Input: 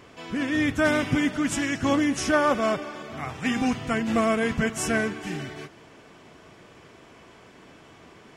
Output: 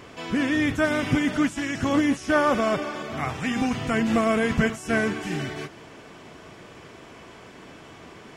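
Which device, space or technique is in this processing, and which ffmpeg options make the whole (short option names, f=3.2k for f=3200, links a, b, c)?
de-esser from a sidechain: -filter_complex "[0:a]asplit=2[a][b];[b]highpass=f=4.2k:w=0.5412,highpass=f=4.2k:w=1.3066,apad=whole_len=368782[c];[a][c]sidechaincompress=threshold=-46dB:ratio=5:attack=0.96:release=24,volume=5dB"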